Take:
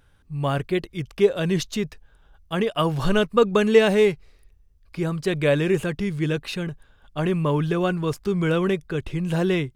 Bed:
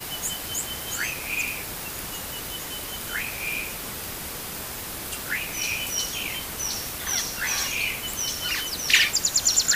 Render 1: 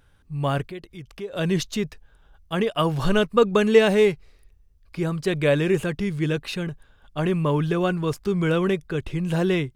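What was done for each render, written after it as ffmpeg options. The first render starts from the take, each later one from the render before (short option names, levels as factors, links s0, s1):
-filter_complex "[0:a]asettb=1/sr,asplit=3[s0][s1][s2];[s0]atrim=end=0.644[s3];[s1]atrim=start=0.64:end=1.33,asetpts=PTS-STARTPTS,afade=t=in:d=0.004:c=qsin,afade=t=out:st=0.686:d=0.004:c=qsin,acompressor=threshold=0.00794:ratio=2:attack=3.2:release=140:knee=1:detection=peak[s4];[s2]atrim=start=1.326[s5];[s3][s4]acrossfade=d=0.004:c1=hsin:c2=qsin[s6];[s6][s5]acrossfade=d=0.004:c1=qsin:c2=hsin"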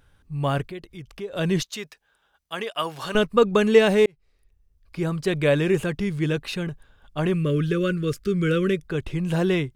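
-filter_complex "[0:a]asettb=1/sr,asplit=3[s0][s1][s2];[s0]atrim=end=1.624[s3];[s1]atrim=start=1.62:end=3.15,asetpts=PTS-STARTPTS,afade=t=in:d=0.004:c=qsin,afade=t=out:st=1.526:d=0.004:c=qsin,highpass=f=1000:p=1[s4];[s2]atrim=start=3.146[s5];[s3][s4]acrossfade=d=0.004:c1=hsin:c2=qsin[s6];[s6][s5]acrossfade=d=0.004:c1=qsin:c2=hsin,asettb=1/sr,asplit=3[s7][s8][s9];[s7]atrim=end=7.344[s10];[s8]atrim=start=7.34:end=8.8,asetpts=PTS-STARTPTS,afade=t=in:d=0.004:c=qsin,afade=t=out:st=1.456:d=0.004:c=qsin,asuperstop=centerf=830:order=8:qfactor=1.3[s11];[s9]atrim=start=8.796[s12];[s10][s11]acrossfade=d=0.004:c1=hsin:c2=qsin[s13];[s13][s12]acrossfade=d=0.004:c1=qsin:c2=hsin,asplit=2[s14][s15];[s14]atrim=end=4.06,asetpts=PTS-STARTPTS,afade=t=out:st=4.056:d=0.004:c=hsin[s16];[s15]atrim=start=4.06,asetpts=PTS-STARTPTS,afade=t=in:d=1.02[s17];[s16][s17]concat=n=2:v=0:a=1"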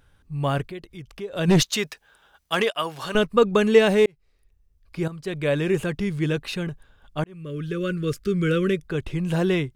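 -filter_complex "[0:a]asplit=3[s0][s1][s2];[s0]afade=t=out:st=1.47:d=0.02[s3];[s1]aeval=exprs='0.266*sin(PI/2*1.78*val(0)/0.266)':c=same,afade=t=in:st=1.47:d=0.02,afade=t=out:st=2.7:d=0.02[s4];[s2]afade=t=in:st=2.7:d=0.02[s5];[s3][s4][s5]amix=inputs=3:normalize=0,asplit=3[s6][s7][s8];[s6]atrim=end=5.08,asetpts=PTS-STARTPTS,afade=t=out:st=5.076:d=0.004:c=hsin:silence=0.251189[s9];[s7]atrim=start=5.08:end=7.24,asetpts=PTS-STARTPTS,afade=t=in:d=1.03:c=qsin:silence=0.251189,afade=t=out:st=2.156:d=0.004:c=hsin[s10];[s8]atrim=start=7.24,asetpts=PTS-STARTPTS,afade=t=in:d=0.87[s11];[s9][s10][s11]concat=n=3:v=0:a=1"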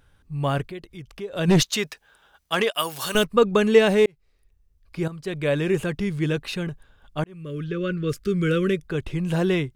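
-filter_complex "[0:a]asplit=3[s0][s1][s2];[s0]afade=t=out:st=2.72:d=0.02[s3];[s1]aemphasis=mode=production:type=75fm,afade=t=in:st=2.72:d=0.02,afade=t=out:st=3.23:d=0.02[s4];[s2]afade=t=in:st=3.23:d=0.02[s5];[s3][s4][s5]amix=inputs=3:normalize=0,asplit=3[s6][s7][s8];[s6]afade=t=out:st=7.63:d=0.02[s9];[s7]lowpass=4400,afade=t=in:st=7.63:d=0.02,afade=t=out:st=8.08:d=0.02[s10];[s8]afade=t=in:st=8.08:d=0.02[s11];[s9][s10][s11]amix=inputs=3:normalize=0"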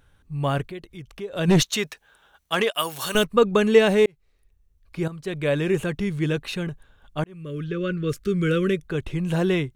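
-af "bandreject=f=4900:w=12"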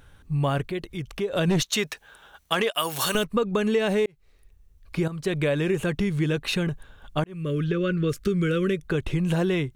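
-filter_complex "[0:a]asplit=2[s0][s1];[s1]alimiter=limit=0.188:level=0:latency=1:release=54,volume=1.19[s2];[s0][s2]amix=inputs=2:normalize=0,acompressor=threshold=0.0794:ratio=4"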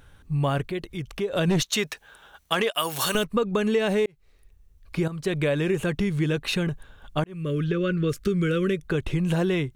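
-af anull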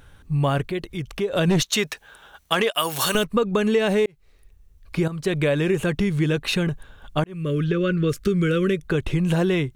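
-af "volume=1.41"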